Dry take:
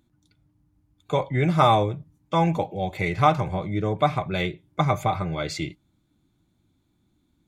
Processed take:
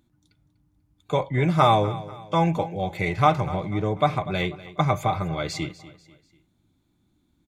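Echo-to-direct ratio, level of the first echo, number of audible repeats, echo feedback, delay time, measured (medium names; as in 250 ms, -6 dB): -16.0 dB, -17.0 dB, 3, 41%, 245 ms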